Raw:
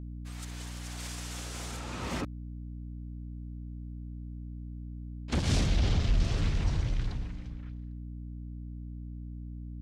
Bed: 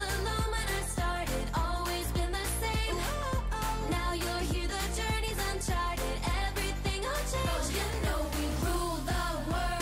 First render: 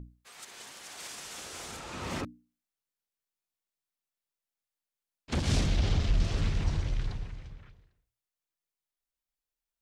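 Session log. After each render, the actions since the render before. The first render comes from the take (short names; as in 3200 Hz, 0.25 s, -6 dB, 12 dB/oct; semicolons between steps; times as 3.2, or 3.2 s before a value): notches 60/120/180/240/300 Hz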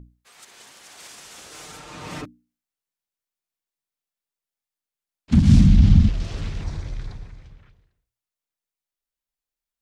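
1.51–2.28 comb 6.6 ms, depth 69%; 5.31–6.09 resonant low shelf 310 Hz +13 dB, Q 3; 6.61–7.43 bell 2900 Hz -8.5 dB 0.21 oct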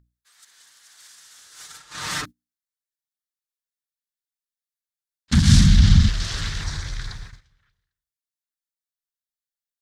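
gate -38 dBFS, range -18 dB; EQ curve 140 Hz 0 dB, 250 Hz -5 dB, 650 Hz -3 dB, 1700 Hz +14 dB, 2500 Hz +5 dB, 3700 Hz +14 dB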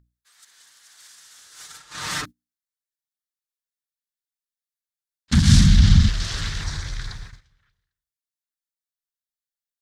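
nothing audible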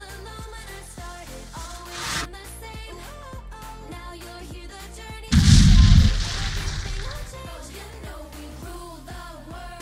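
add bed -6 dB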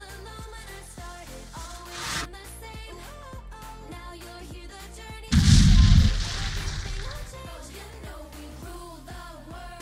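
gain -3 dB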